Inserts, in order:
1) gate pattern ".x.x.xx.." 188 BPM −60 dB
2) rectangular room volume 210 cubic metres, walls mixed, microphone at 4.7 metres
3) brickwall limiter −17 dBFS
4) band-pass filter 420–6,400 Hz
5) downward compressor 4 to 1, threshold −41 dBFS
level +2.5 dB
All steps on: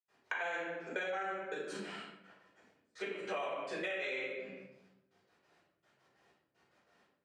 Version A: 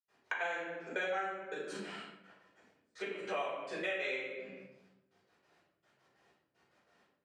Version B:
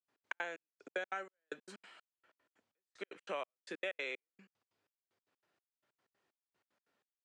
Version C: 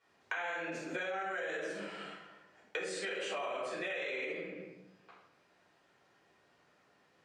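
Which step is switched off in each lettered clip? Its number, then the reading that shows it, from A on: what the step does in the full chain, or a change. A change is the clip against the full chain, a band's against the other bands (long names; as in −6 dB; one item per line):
3, average gain reduction 2.0 dB
2, change in momentary loudness spread +2 LU
1, 8 kHz band +6.0 dB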